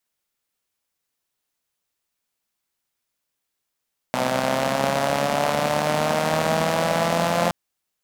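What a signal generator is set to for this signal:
pulse-train model of a four-cylinder engine, changing speed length 3.37 s, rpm 3,800, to 5,200, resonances 220/600 Hz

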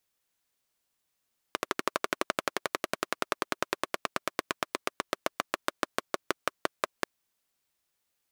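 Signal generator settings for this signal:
pulse-train model of a single-cylinder engine, changing speed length 5.49 s, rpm 1,500, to 600, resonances 390/590/1,100 Hz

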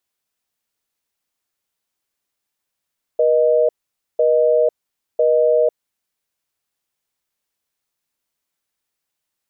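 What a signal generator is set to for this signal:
call progress tone busy tone, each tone −14.5 dBFS 2.59 s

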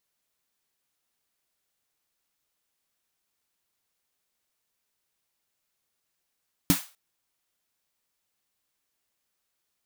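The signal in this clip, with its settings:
synth snare length 0.25 s, tones 180 Hz, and 280 Hz, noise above 700 Hz, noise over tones −5.5 dB, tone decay 0.11 s, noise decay 0.33 s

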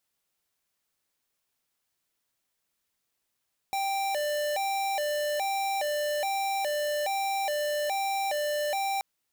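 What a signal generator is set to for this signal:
siren hi-lo 593–785 Hz 1.2 per second square −29 dBFS 5.28 s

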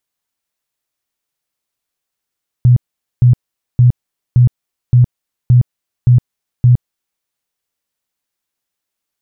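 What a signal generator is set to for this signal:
tone bursts 123 Hz, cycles 14, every 0.57 s, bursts 8, −4 dBFS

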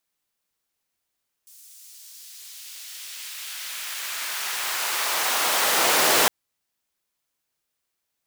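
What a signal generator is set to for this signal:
filter sweep on noise pink, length 4.81 s highpass, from 7,600 Hz, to 440 Hz, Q 0.89, exponential, gain ramp +27 dB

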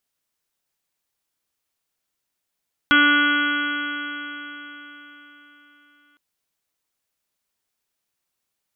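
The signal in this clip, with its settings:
stiff-string partials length 3.26 s, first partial 290 Hz, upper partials −16.5/−18.5/−2.5/6/−12.5/−5/−10/−9.5/−8.5/−3 dB, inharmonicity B 0.00058, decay 4.21 s, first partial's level −19 dB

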